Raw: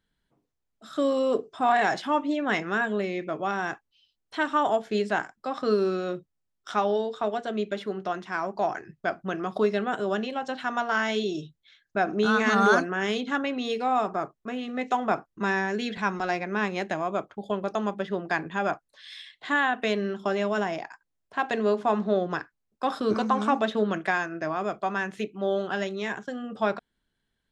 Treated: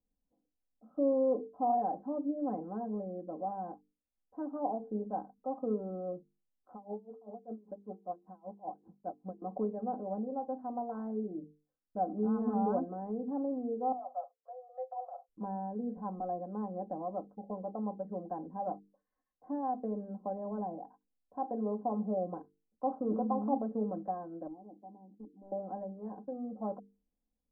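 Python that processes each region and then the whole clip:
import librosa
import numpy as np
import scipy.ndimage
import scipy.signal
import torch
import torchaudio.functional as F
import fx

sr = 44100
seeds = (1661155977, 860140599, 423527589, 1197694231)

y = fx.chain(x, sr, fx.crossing_spikes(level_db=-25.5),
    fx.high_shelf(hz=3300.0, db=-11.5),
    fx.tremolo_db(hz=5.1, depth_db=27), at=(6.73, 9.42))
y = fx.chain(y, sr, fx.over_compress(threshold_db=-26.0, ratio=-0.5),
    fx.cheby_ripple_highpass(hz=500.0, ripple_db=9), at=(13.92, 15.29))
y = fx.chain(y, sr, fx.formant_cascade(vowel='u'),
    fx.clip_hard(threshold_db=-35.5), at=(24.47, 25.52))
y = scipy.signal.sosfilt(scipy.signal.butter(6, 840.0, 'lowpass', fs=sr, output='sos'), y)
y = fx.hum_notches(y, sr, base_hz=50, count=9)
y = y + 0.86 * np.pad(y, (int(3.9 * sr / 1000.0), 0))[:len(y)]
y = y * librosa.db_to_amplitude(-9.0)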